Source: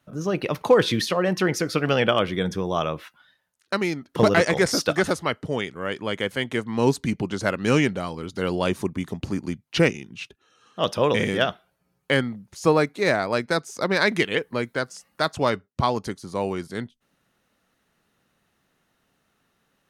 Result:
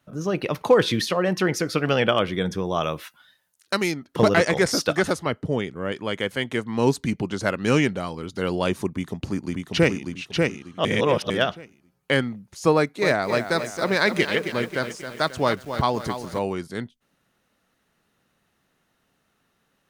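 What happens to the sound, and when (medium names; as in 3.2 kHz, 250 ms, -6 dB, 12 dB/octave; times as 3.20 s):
2.83–3.92 s: treble shelf 4.6 kHz +11.5 dB
5.26–5.92 s: tilt shelf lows +4.5 dB, about 670 Hz
8.91–10.03 s: echo throw 590 ms, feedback 30%, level -3 dB
10.85–11.30 s: reverse
12.75–16.39 s: bit-crushed delay 269 ms, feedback 55%, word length 7-bit, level -9 dB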